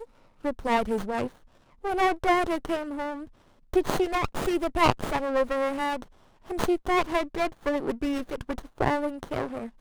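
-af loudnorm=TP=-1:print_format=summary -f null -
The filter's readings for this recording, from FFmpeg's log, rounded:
Input Integrated:    -28.2 LUFS
Input True Peak:      -5.4 dBTP
Input LRA:             2.5 LU
Input Threshold:     -38.5 LUFS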